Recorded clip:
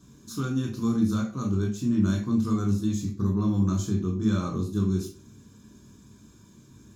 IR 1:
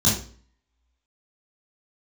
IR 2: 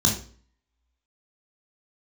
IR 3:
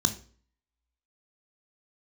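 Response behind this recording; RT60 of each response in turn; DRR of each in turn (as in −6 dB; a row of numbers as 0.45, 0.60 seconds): 2; 0.45, 0.45, 0.45 seconds; −7.5, −0.5, 8.5 decibels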